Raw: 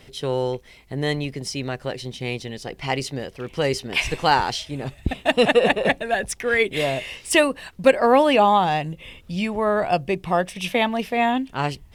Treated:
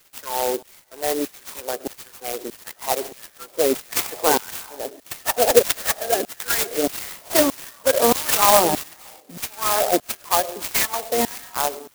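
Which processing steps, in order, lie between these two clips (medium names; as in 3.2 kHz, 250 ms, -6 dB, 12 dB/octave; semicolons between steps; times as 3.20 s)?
coarse spectral quantiser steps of 30 dB; in parallel at -10 dB: sample-and-hold 22×; on the sum: high-pass 190 Hz 24 dB/octave; treble shelf 6.1 kHz -9 dB; algorithmic reverb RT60 1 s, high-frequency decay 0.6×, pre-delay 65 ms, DRR 15.5 dB; LFO high-pass saw down 1.6 Hz 270–4000 Hz; 8.15–8.94 s: tone controls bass +15 dB, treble +14 dB; sampling jitter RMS 0.12 ms; trim -2 dB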